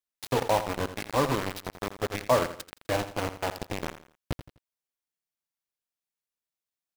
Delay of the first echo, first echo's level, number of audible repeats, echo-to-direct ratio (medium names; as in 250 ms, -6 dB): 84 ms, -12.0 dB, 3, -11.5 dB